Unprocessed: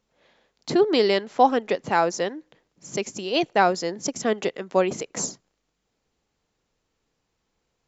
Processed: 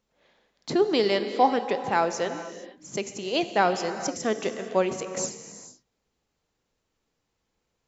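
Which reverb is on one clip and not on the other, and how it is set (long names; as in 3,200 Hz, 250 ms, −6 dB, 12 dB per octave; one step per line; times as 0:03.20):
reverb whose tail is shaped and stops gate 490 ms flat, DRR 8.5 dB
level −3 dB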